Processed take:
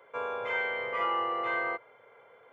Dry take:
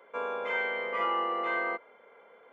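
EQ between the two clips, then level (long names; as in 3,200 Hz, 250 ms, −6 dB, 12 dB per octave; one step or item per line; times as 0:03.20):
low shelf with overshoot 160 Hz +8 dB, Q 3
0.0 dB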